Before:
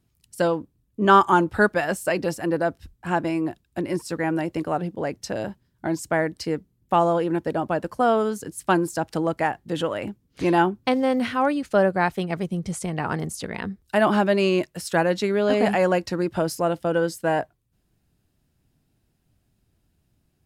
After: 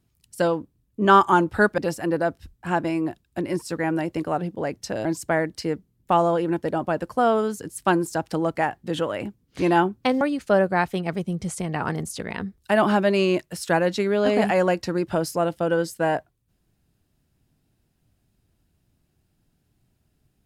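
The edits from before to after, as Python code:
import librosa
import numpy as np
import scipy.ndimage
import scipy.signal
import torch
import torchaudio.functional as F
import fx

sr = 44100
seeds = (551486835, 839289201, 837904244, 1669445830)

y = fx.edit(x, sr, fx.cut(start_s=1.78, length_s=0.4),
    fx.cut(start_s=5.45, length_s=0.42),
    fx.cut(start_s=11.03, length_s=0.42), tone=tone)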